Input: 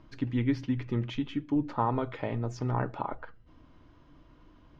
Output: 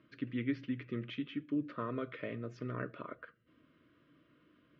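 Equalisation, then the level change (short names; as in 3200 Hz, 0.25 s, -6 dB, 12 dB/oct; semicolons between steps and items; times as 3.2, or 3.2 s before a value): Chebyshev band-pass 150–2800 Hz, order 2; Butterworth band-stop 840 Hz, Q 1.5; low shelf 290 Hz -7.5 dB; -2.5 dB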